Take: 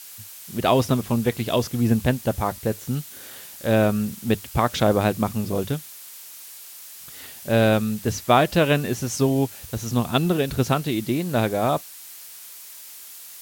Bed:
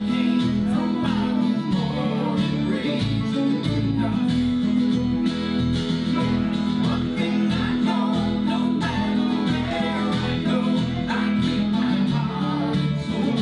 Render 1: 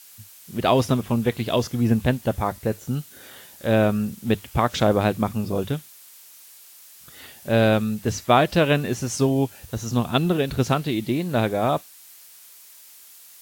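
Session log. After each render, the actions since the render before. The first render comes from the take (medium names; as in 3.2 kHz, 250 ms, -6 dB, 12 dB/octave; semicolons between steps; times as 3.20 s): noise print and reduce 6 dB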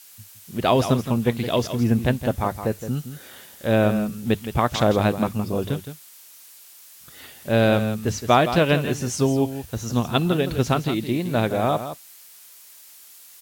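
delay 166 ms -10.5 dB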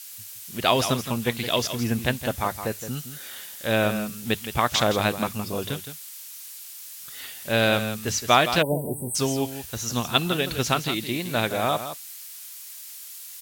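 8.62–9.15 s: spectral selection erased 1–7.9 kHz; tilt shelf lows -6.5 dB, about 1.1 kHz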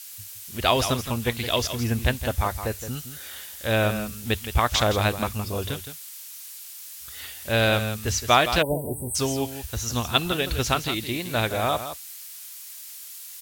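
resonant low shelf 100 Hz +13 dB, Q 1.5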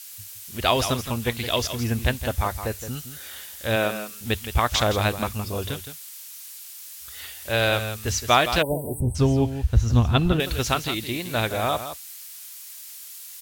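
3.75–4.20 s: high-pass 160 Hz -> 490 Hz; 6.28–8.05 s: peaking EQ 180 Hz -10.5 dB; 9.00–10.40 s: RIAA curve playback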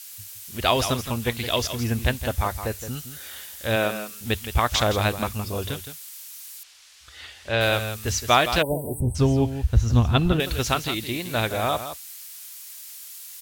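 6.63–7.61 s: low-pass 4.7 kHz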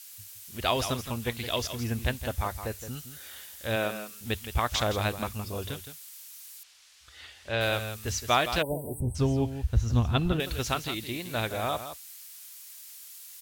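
trim -6 dB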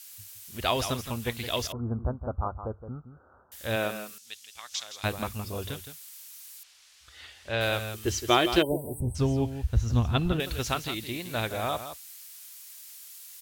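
1.72–3.52 s: steep low-pass 1.4 kHz 96 dB/octave; 4.18–5.04 s: band-pass filter 5.8 kHz, Q 1.4; 7.94–8.77 s: small resonant body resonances 350/3100 Hz, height 17 dB, ringing for 70 ms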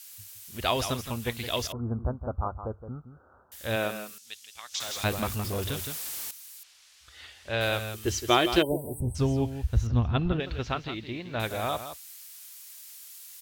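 4.80–6.31 s: jump at every zero crossing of -32.5 dBFS; 9.87–11.40 s: distance through air 220 m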